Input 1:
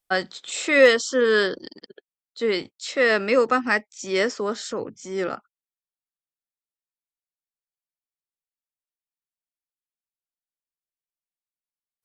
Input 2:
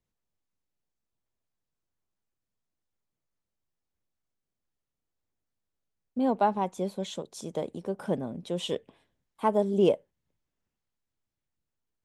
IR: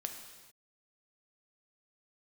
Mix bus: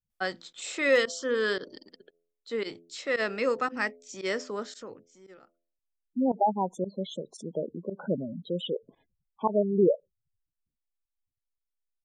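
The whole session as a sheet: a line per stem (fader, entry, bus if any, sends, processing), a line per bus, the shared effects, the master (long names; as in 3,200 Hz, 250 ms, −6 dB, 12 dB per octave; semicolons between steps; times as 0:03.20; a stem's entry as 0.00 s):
0:04.61 −8 dB → 0:05.38 −18 dB, 0.10 s, no send, hum removal 84.93 Hz, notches 8; automatic ducking −17 dB, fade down 1.45 s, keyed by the second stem
+1.0 dB, 0.00 s, no send, gate on every frequency bin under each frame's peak −10 dB strong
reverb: not used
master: fake sidechain pumping 114 BPM, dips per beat 1, −21 dB, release 61 ms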